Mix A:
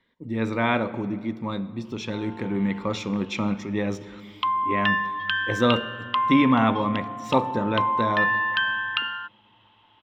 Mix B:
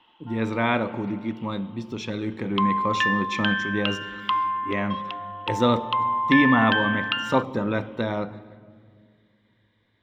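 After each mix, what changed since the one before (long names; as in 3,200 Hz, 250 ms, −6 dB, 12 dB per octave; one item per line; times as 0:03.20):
background: entry −1.85 s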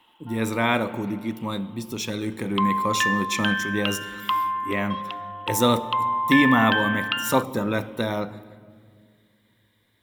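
speech: remove high-frequency loss of the air 180 metres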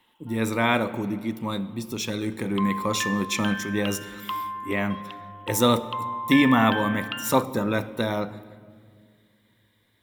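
background −7.0 dB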